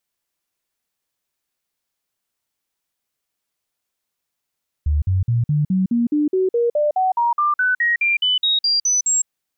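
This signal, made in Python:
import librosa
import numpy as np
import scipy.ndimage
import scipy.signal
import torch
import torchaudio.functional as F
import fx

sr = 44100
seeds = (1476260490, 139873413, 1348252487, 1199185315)

y = fx.stepped_sweep(sr, from_hz=74.4, direction='up', per_octave=3, tones=21, dwell_s=0.16, gap_s=0.05, level_db=-14.5)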